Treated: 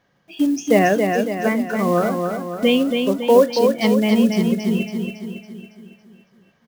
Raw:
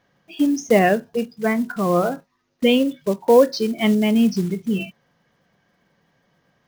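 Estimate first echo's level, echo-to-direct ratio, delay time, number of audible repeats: −5.0 dB, −3.5 dB, 278 ms, 6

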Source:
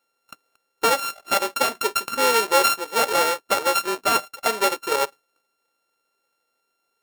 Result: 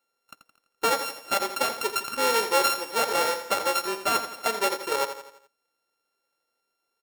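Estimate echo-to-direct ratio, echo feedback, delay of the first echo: −9.0 dB, 48%, 84 ms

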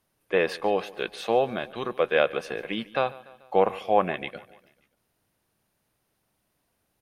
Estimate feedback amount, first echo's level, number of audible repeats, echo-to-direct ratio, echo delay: 55%, −20.5 dB, 3, −19.0 dB, 145 ms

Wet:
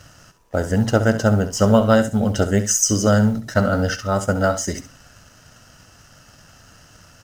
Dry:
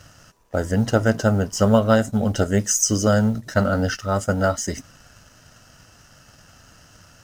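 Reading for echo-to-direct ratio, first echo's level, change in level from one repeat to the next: −12.0 dB, −12.0 dB, −14.5 dB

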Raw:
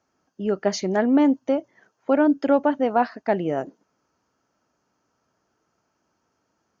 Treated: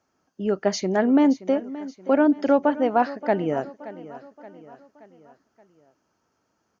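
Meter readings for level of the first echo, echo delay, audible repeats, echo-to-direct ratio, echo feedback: −16.5 dB, 575 ms, 4, −15.5 dB, 50%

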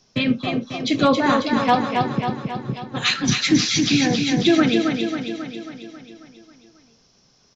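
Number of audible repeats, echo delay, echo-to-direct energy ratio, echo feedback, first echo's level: 7, 271 ms, −3.0 dB, 58%, −5.0 dB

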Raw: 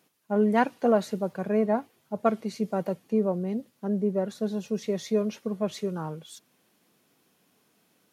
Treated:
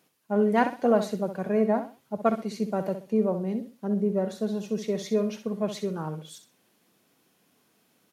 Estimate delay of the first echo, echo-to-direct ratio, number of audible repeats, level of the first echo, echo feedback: 64 ms, −9.5 dB, 3, −10.0 dB, 27%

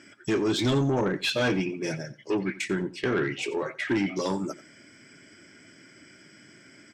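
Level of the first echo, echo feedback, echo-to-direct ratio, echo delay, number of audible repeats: −17.5 dB, 17%, −17.5 dB, 89 ms, 2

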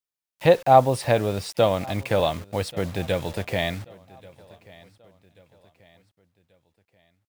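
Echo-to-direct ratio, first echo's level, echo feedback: −22.0 dB, −23.0 dB, 44%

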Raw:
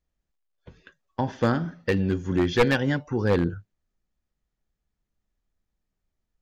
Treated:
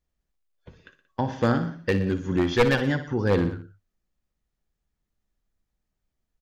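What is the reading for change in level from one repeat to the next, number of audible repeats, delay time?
−4.5 dB, 3, 60 ms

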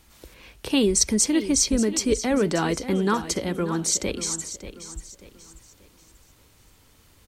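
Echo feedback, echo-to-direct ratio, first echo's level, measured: 35%, −12.0 dB, −12.5 dB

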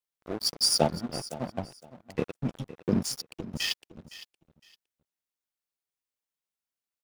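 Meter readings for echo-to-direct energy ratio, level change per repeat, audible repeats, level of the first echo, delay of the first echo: −16.0 dB, −13.0 dB, 2, −16.0 dB, 512 ms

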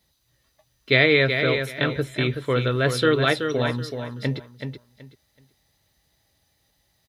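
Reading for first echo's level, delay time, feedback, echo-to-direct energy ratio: −7.0 dB, 377 ms, 22%, −7.0 dB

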